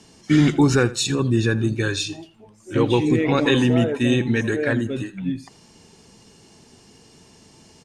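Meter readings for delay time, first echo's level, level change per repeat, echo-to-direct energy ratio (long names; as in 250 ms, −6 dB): 82 ms, −18.0 dB, −13.5 dB, −18.0 dB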